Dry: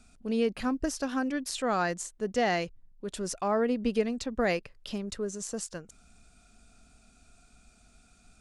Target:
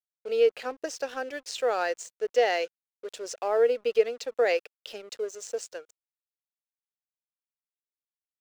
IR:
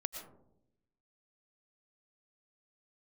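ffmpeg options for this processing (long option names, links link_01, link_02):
-af "highpass=frequency=430:width=0.5412,highpass=frequency=430:width=1.3066,equalizer=frequency=470:width_type=q:width=4:gain=9,equalizer=frequency=1100:width_type=q:width=4:gain=-8,equalizer=frequency=2700:width_type=q:width=4:gain=3,lowpass=frequency=7400:width=0.5412,lowpass=frequency=7400:width=1.3066,aeval=exprs='sgn(val(0))*max(abs(val(0))-0.00266,0)':channel_layout=same,volume=1.5dB"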